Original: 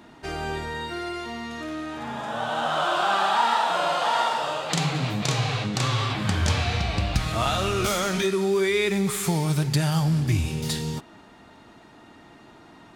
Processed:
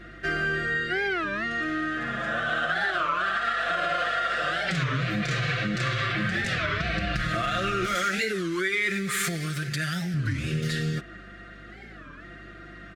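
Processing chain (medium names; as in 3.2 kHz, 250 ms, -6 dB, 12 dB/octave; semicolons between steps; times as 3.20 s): peak limiter -17.5 dBFS, peak gain reduction 9.5 dB; Butterworth band-stop 910 Hz, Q 1.9; peaking EQ 1.7 kHz +11 dB 0.86 oct; comb 5.8 ms, depth 76%; hum 50 Hz, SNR 26 dB; low-pass 3.6 kHz 6 dB/octave; compression, threshold -23 dBFS, peak gain reduction 6.5 dB; 7.95–10.17 s: tilt EQ +2 dB/octave; warped record 33 1/3 rpm, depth 250 cents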